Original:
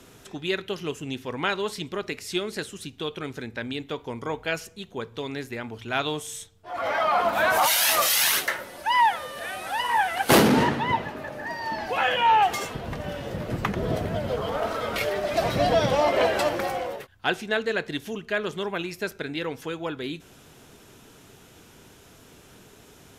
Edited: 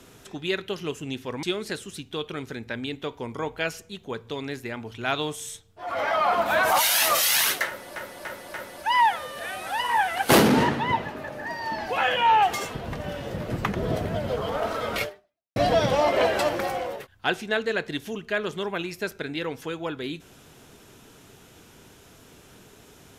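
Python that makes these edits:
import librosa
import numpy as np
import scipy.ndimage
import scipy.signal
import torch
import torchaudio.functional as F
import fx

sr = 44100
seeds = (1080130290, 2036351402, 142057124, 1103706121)

y = fx.edit(x, sr, fx.cut(start_s=1.43, length_s=0.87),
    fx.repeat(start_s=8.54, length_s=0.29, count=4),
    fx.fade_out_span(start_s=15.03, length_s=0.53, curve='exp'), tone=tone)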